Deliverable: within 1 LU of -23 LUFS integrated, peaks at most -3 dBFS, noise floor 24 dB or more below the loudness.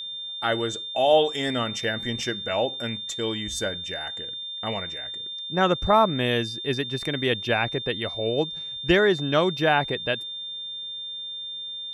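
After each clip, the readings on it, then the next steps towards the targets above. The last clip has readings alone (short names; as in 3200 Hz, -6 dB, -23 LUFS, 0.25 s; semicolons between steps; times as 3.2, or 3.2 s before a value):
steady tone 3600 Hz; tone level -32 dBFS; loudness -25.5 LUFS; peak -7.0 dBFS; loudness target -23.0 LUFS
-> notch 3600 Hz, Q 30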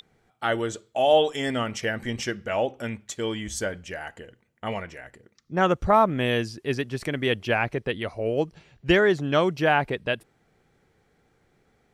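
steady tone none; loudness -25.5 LUFS; peak -7.5 dBFS; loudness target -23.0 LUFS
-> gain +2.5 dB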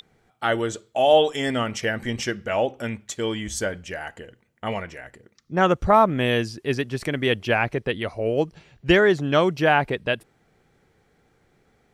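loudness -23.0 LUFS; peak -5.0 dBFS; noise floor -65 dBFS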